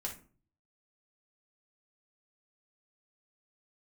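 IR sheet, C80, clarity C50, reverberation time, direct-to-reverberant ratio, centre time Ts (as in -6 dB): 16.5 dB, 9.0 dB, 0.40 s, -0.5 dB, 16 ms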